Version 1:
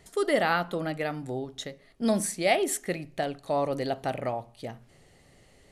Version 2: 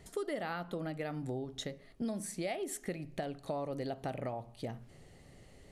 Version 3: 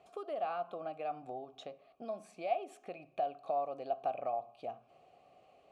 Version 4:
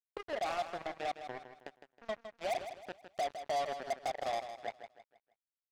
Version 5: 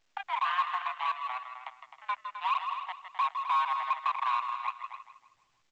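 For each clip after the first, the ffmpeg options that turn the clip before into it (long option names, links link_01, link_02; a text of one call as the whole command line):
ffmpeg -i in.wav -af "lowshelf=frequency=460:gain=6,acompressor=threshold=-32dB:ratio=6,volume=-3dB" out.wav
ffmpeg -i in.wav -filter_complex "[0:a]asplit=3[link_01][link_02][link_03];[link_01]bandpass=frequency=730:width_type=q:width=8,volume=0dB[link_04];[link_02]bandpass=frequency=1090:width_type=q:width=8,volume=-6dB[link_05];[link_03]bandpass=frequency=2440:width_type=q:width=8,volume=-9dB[link_06];[link_04][link_05][link_06]amix=inputs=3:normalize=0,volume=10dB" out.wav
ffmpeg -i in.wav -filter_complex "[0:a]asoftclip=type=hard:threshold=-29.5dB,acrusher=bits=5:mix=0:aa=0.5,asplit=2[link_01][link_02];[link_02]aecho=0:1:159|318|477|636:0.316|0.117|0.0433|0.016[link_03];[link_01][link_03]amix=inputs=2:normalize=0" out.wav
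ffmpeg -i in.wav -af "highpass=frequency=320:width_type=q:width=0.5412,highpass=frequency=320:width_type=q:width=1.307,lowpass=frequency=3200:width_type=q:width=0.5176,lowpass=frequency=3200:width_type=q:width=0.7071,lowpass=frequency=3200:width_type=q:width=1.932,afreqshift=380,aecho=1:1:160.3|259.5:0.282|0.316,volume=6dB" -ar 16000 -c:a pcm_alaw out.wav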